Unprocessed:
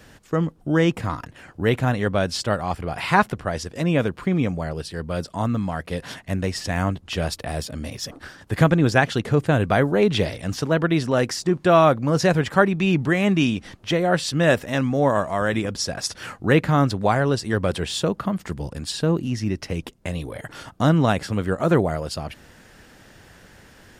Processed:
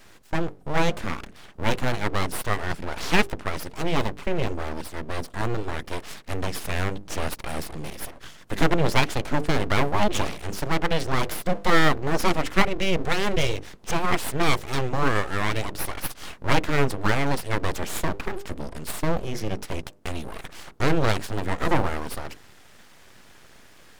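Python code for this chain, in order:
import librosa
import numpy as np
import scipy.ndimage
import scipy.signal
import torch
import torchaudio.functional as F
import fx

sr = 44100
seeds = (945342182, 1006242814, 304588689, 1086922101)

y = fx.hum_notches(x, sr, base_hz=50, count=7)
y = np.abs(y)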